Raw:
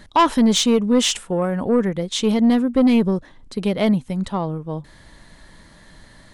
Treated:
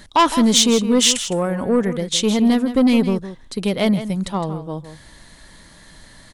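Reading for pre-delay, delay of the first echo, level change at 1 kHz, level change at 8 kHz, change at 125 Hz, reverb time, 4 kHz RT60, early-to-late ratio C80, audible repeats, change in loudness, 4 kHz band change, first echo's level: no reverb audible, 161 ms, +1.0 dB, +7.0 dB, 0.0 dB, no reverb audible, no reverb audible, no reverb audible, 1, +1.5 dB, +4.5 dB, −12.0 dB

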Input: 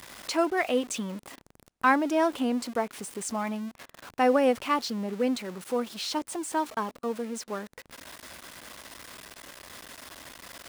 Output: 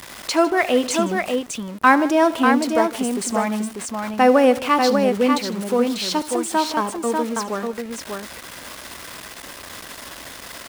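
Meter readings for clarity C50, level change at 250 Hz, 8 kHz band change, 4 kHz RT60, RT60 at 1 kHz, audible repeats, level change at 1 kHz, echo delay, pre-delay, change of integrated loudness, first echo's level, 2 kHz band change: no reverb audible, +9.5 dB, +9.5 dB, no reverb audible, no reverb audible, 3, +9.5 dB, 75 ms, no reverb audible, +9.0 dB, −17.5 dB, +9.5 dB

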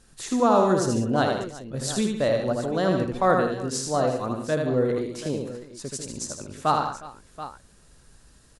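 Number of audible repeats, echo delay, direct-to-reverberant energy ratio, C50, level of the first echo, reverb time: 5, 79 ms, no reverb audible, no reverb audible, −4.0 dB, no reverb audible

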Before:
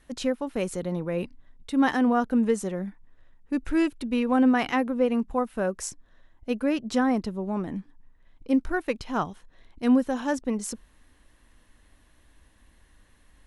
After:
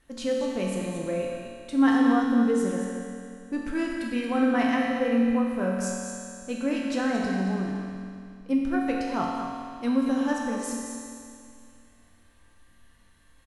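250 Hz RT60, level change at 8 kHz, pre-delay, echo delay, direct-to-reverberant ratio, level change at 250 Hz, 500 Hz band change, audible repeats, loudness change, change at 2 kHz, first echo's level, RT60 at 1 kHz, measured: 2.4 s, +1.0 dB, 4 ms, 227 ms, −3.5 dB, +0.5 dB, −0.5 dB, 1, 0.0 dB, +0.5 dB, −8.0 dB, 2.4 s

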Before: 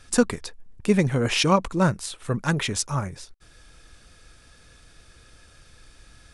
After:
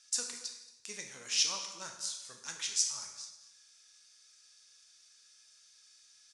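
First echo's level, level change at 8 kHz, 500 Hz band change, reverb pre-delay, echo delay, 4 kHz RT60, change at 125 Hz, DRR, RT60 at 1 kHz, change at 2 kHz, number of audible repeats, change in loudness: −18.5 dB, −1.0 dB, −28.5 dB, 7 ms, 227 ms, 0.90 s, below −35 dB, 3.0 dB, 0.95 s, −15.5 dB, 1, −10.5 dB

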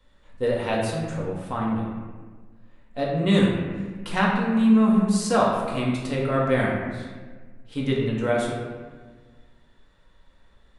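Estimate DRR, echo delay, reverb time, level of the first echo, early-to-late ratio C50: −4.0 dB, no echo audible, 1.4 s, no echo audible, 1.0 dB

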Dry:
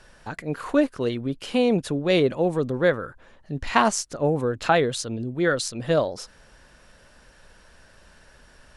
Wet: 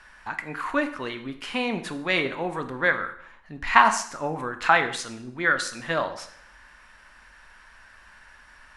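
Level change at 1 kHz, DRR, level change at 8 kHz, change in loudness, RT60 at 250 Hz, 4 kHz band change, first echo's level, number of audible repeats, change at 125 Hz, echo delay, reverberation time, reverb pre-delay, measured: +3.5 dB, 7.5 dB, −3.5 dB, −1.5 dB, 0.70 s, −0.5 dB, no echo audible, no echo audible, −10.0 dB, no echo audible, 0.65 s, 8 ms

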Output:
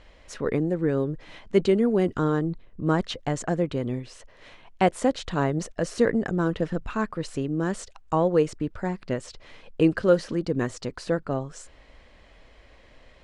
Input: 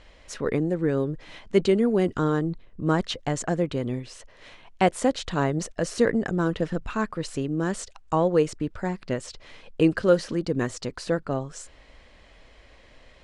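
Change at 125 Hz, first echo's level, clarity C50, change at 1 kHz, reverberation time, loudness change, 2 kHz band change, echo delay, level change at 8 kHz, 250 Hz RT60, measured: 0.0 dB, no echo audible, no reverb audible, −0.5 dB, no reverb audible, 0.0 dB, −1.0 dB, no echo audible, −3.5 dB, no reverb audible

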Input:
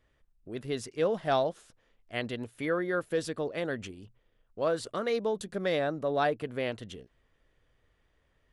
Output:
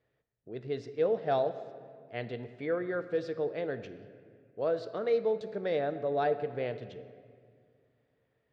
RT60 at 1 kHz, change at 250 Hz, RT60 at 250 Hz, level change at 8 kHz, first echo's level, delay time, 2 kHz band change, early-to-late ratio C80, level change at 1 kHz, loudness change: 1.8 s, −4.0 dB, 2.6 s, below −20 dB, no echo audible, no echo audible, −6.0 dB, 13.5 dB, −2.5 dB, −1.0 dB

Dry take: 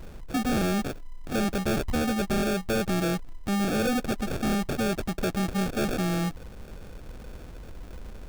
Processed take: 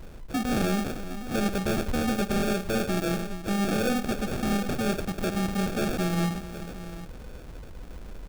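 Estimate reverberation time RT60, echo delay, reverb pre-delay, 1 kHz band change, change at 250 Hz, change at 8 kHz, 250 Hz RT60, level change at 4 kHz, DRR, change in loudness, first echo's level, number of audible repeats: no reverb audible, 53 ms, no reverb audible, 0.0 dB, 0.0 dB, 0.0 dB, no reverb audible, 0.0 dB, no reverb audible, −0.5 dB, −13.5 dB, 4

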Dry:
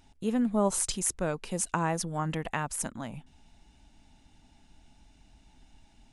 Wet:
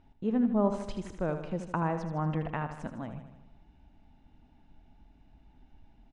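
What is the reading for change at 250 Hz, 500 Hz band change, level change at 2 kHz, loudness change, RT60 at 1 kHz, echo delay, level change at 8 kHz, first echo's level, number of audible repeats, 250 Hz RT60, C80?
+0.5 dB, −0.5 dB, −5.0 dB, −2.0 dB, no reverb audible, 78 ms, below −25 dB, −9.5 dB, 6, no reverb audible, no reverb audible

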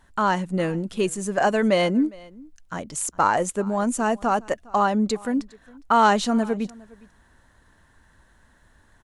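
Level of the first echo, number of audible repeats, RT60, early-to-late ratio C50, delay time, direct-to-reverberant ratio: −23.5 dB, 1, no reverb audible, no reverb audible, 409 ms, no reverb audible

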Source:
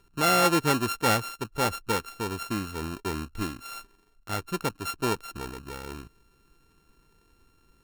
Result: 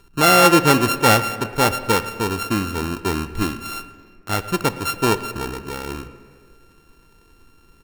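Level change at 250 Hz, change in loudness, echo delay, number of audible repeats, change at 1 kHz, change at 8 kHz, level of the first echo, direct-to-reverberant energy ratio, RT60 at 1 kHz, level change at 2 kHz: +9.5 dB, +9.5 dB, 111 ms, 1, +9.0 dB, +8.5 dB, −21.5 dB, 11.0 dB, 1.6 s, +10.0 dB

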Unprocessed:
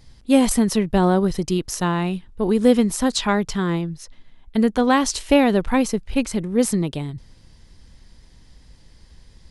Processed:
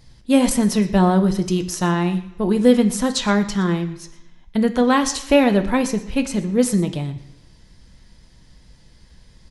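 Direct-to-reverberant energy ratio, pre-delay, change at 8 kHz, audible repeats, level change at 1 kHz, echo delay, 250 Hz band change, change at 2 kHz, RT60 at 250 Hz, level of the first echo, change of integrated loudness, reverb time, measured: 6.0 dB, 3 ms, +0.5 dB, 1, +0.5 dB, 119 ms, +1.5 dB, +1.0 dB, 0.85 s, −19.0 dB, +1.5 dB, 1.0 s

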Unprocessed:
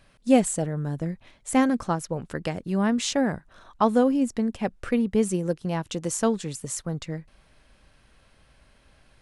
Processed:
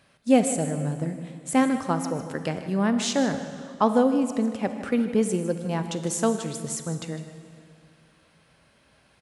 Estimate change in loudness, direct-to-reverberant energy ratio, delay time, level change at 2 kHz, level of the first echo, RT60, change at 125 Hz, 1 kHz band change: +0.5 dB, 8.0 dB, 154 ms, +0.5 dB, −13.5 dB, 2.4 s, 0.0 dB, +0.5 dB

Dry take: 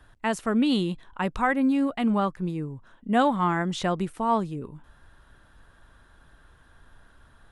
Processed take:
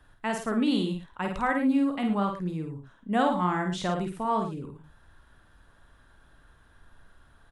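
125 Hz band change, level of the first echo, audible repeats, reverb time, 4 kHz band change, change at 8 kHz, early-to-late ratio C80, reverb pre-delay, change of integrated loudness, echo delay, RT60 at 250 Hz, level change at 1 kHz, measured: −2.0 dB, −5.0 dB, 2, no reverb audible, −2.5 dB, −2.5 dB, no reverb audible, no reverb audible, −2.0 dB, 50 ms, no reverb audible, −2.5 dB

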